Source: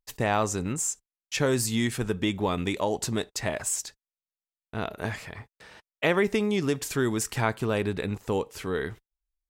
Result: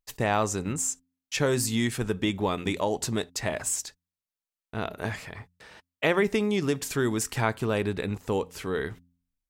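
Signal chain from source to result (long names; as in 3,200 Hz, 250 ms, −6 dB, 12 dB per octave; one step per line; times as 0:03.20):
hum removal 87.42 Hz, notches 3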